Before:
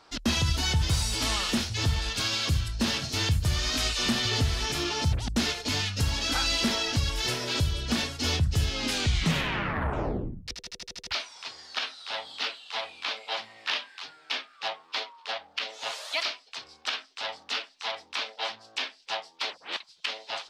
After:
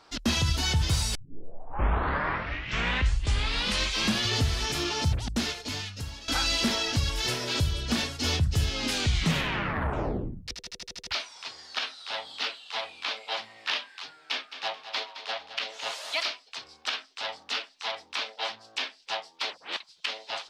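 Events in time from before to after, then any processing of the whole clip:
1.15 s: tape start 3.19 s
5.08–6.28 s: fade out linear, to -16.5 dB
14.18–16.27 s: feedback delay 216 ms, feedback 38%, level -11.5 dB

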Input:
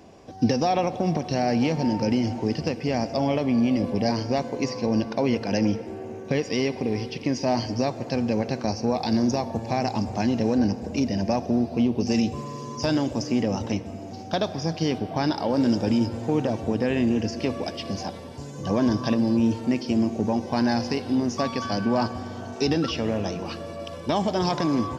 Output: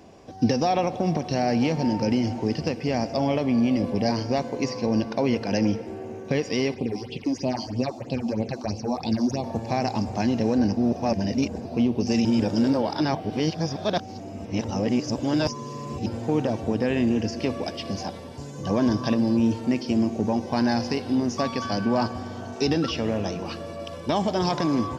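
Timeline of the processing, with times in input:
6.74–9.44 s: phase shifter stages 6, 3.1 Hz, lowest notch 110–1700 Hz
10.77–11.65 s: reverse
12.25–16.06 s: reverse

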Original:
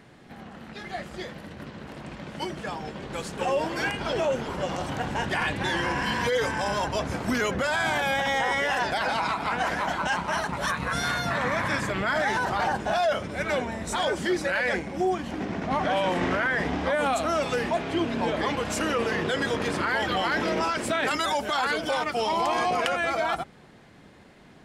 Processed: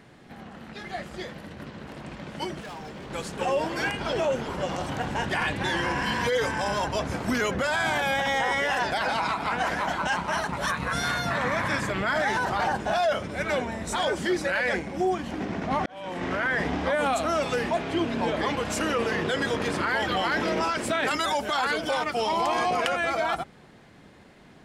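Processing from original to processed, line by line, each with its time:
2.60–3.11 s: hard clipper -36.5 dBFS
15.86–16.52 s: fade in

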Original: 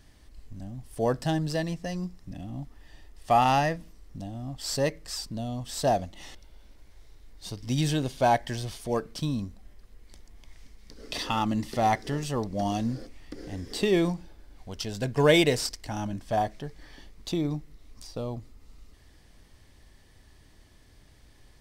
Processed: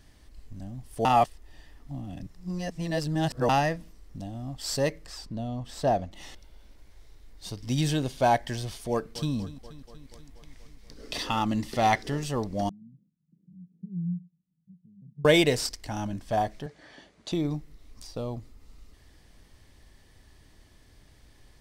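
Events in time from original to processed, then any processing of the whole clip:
1.05–3.49 s: reverse
5.06–6.12 s: treble shelf 4 kHz -12 dB
8.91–9.34 s: echo throw 240 ms, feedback 70%, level -16 dB
11.45–12.03 s: dynamic bell 3 kHz, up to +7 dB, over -44 dBFS, Q 0.74
12.69–15.25 s: Butterworth band-pass 170 Hz, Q 5.8
16.66–17.32 s: cabinet simulation 140–9200 Hz, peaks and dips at 630 Hz +8 dB, 1.5 kHz +4 dB, 5.2 kHz -4 dB, 8.2 kHz -3 dB

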